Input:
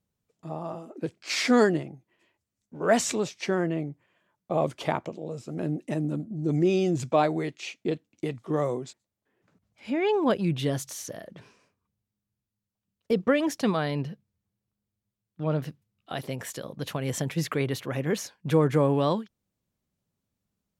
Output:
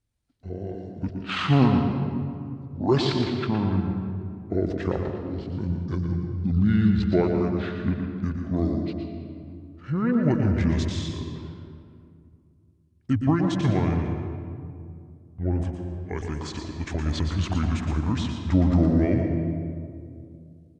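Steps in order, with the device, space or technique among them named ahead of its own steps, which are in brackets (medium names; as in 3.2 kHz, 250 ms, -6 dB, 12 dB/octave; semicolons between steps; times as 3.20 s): monster voice (pitch shift -9.5 st; bass shelf 100 Hz +5.5 dB; delay 116 ms -8 dB; reverberation RT60 2.4 s, pre-delay 111 ms, DRR 5.5 dB)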